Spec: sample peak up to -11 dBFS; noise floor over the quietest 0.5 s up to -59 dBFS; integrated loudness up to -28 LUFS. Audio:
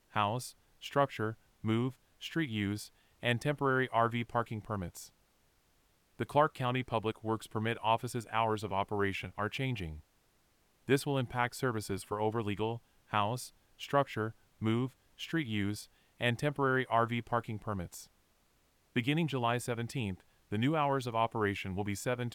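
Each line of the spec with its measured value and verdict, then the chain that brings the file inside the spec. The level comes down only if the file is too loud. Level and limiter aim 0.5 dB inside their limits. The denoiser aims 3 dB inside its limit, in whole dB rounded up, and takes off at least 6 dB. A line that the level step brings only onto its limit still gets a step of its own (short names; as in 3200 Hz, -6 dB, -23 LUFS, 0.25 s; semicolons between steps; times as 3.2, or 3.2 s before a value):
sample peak -13.5 dBFS: OK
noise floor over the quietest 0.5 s -71 dBFS: OK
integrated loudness -34.0 LUFS: OK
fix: none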